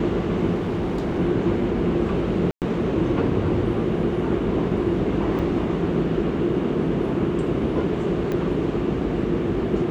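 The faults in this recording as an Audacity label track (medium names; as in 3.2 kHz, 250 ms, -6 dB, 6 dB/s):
0.540000	1.190000	clipped -21 dBFS
2.510000	2.620000	dropout 108 ms
5.390000	5.390000	dropout 2.9 ms
8.320000	8.320000	pop -15 dBFS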